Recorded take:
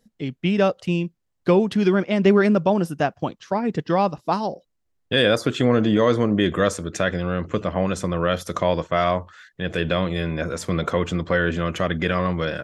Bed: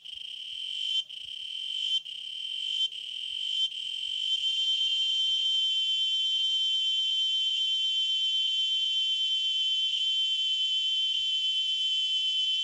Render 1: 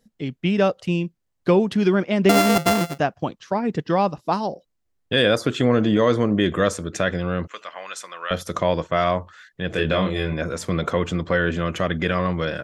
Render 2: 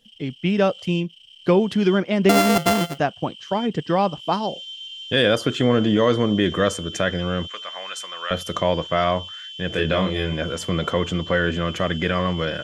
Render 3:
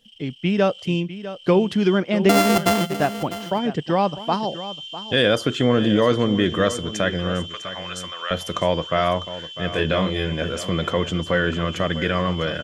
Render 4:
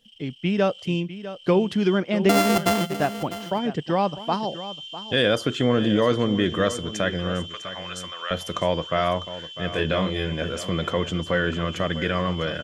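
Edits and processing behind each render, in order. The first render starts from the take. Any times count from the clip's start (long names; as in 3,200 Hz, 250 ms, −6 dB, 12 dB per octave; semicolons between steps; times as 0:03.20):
0:02.29–0:02.99: samples sorted by size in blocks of 64 samples; 0:07.47–0:08.31: high-pass filter 1,300 Hz; 0:09.70–0:10.34: double-tracking delay 26 ms −4 dB
mix in bed −9 dB
single-tap delay 651 ms −13.5 dB
level −2.5 dB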